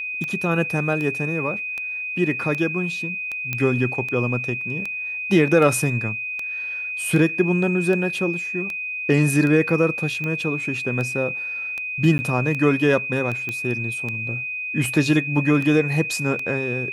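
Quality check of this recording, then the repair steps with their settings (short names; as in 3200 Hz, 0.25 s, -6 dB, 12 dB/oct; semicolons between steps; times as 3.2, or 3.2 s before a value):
tick 78 rpm -16 dBFS
tone 2500 Hz -26 dBFS
3.53 pop -10 dBFS
12.18–12.19 gap 10 ms
13.49 pop -14 dBFS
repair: de-click; notch 2500 Hz, Q 30; interpolate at 12.18, 10 ms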